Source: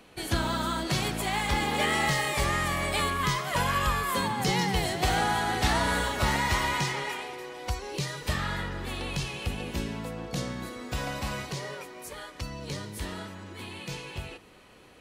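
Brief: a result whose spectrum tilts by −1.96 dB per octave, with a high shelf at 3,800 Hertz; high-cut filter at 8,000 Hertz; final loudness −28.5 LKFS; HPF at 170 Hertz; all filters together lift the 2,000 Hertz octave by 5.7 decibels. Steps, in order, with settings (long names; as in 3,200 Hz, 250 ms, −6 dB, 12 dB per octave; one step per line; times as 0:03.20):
high-pass filter 170 Hz
low-pass filter 8,000 Hz
parametric band 2,000 Hz +4.5 dB
high-shelf EQ 3,800 Hz +9 dB
level −2.5 dB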